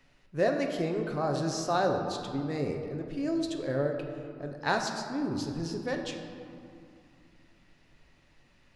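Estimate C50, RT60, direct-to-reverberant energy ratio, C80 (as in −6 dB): 5.0 dB, 2.4 s, 3.0 dB, 6.5 dB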